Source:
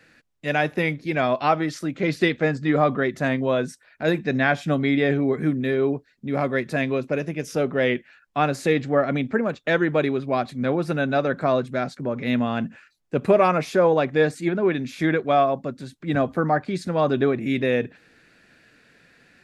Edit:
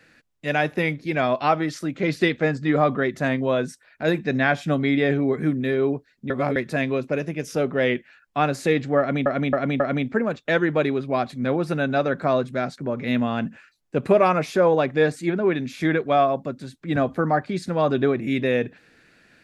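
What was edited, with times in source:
6.3–6.56 reverse
8.99–9.26 loop, 4 plays

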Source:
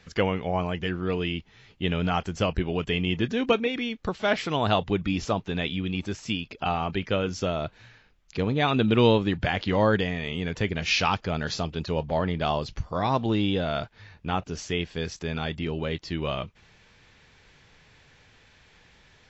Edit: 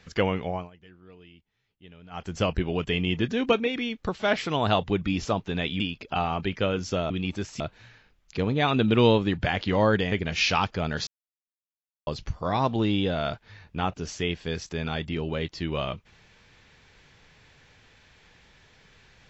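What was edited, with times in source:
0.43–2.37 dip -23 dB, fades 0.27 s
5.8–6.3 move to 7.6
10.12–10.62 cut
11.57–12.57 mute

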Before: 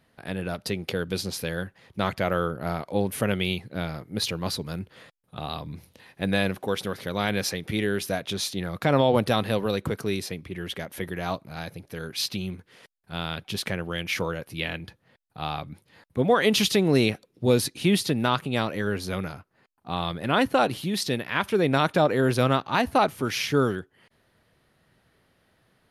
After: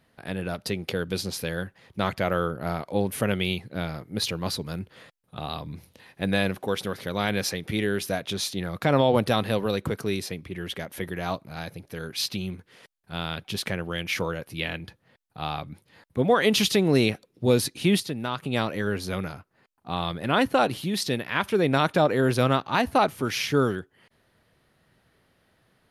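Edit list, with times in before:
18–18.43 gain -6.5 dB

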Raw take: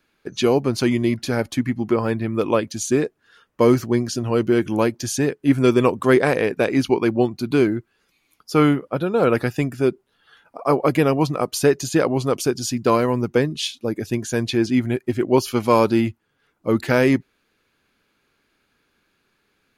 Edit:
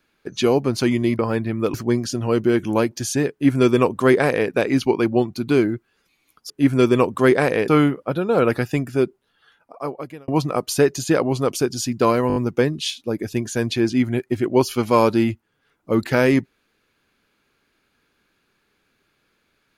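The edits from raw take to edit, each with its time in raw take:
1.19–1.94 cut
2.49–3.77 cut
5.35–6.53 copy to 8.53
9.86–11.13 fade out
13.13 stutter 0.02 s, 5 plays

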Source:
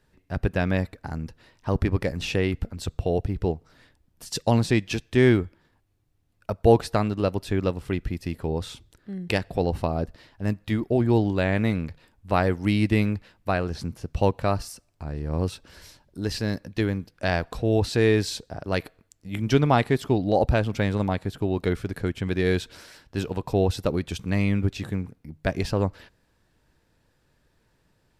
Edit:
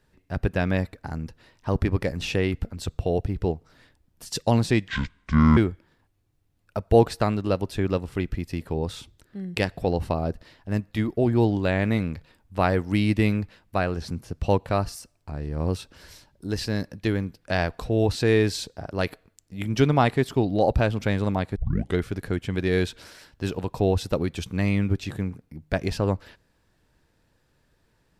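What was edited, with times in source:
4.88–5.3 speed 61%
21.29 tape start 0.40 s

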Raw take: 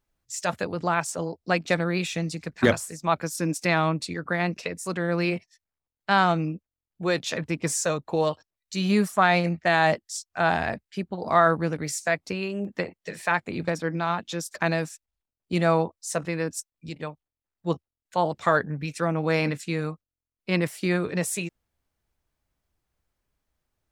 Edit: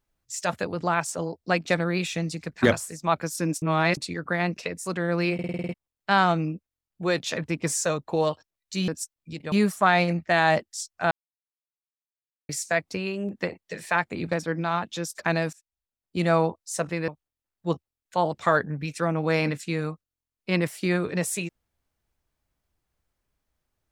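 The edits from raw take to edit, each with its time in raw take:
3.62–3.97 reverse
5.34 stutter in place 0.05 s, 8 plays
10.47–11.85 mute
14.89–15.65 fade in, from -16 dB
16.44–17.08 move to 8.88

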